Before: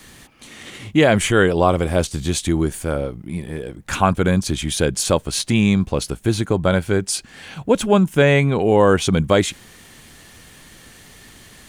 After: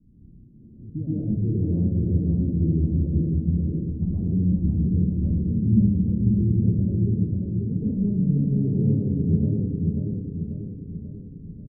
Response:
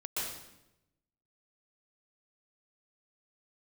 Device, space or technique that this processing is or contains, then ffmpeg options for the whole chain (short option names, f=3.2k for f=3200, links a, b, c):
club heard from the street: -filter_complex "[0:a]lowpass=1.8k,alimiter=limit=-11dB:level=0:latency=1:release=251,lowpass=f=240:w=0.5412,lowpass=f=240:w=1.3066[a];[1:a]atrim=start_sample=2205[b];[a][b]afir=irnorm=-1:irlink=0,aecho=1:1:539|1078|1617|2156|2695|3234|3773:0.708|0.368|0.191|0.0995|0.0518|0.0269|0.014"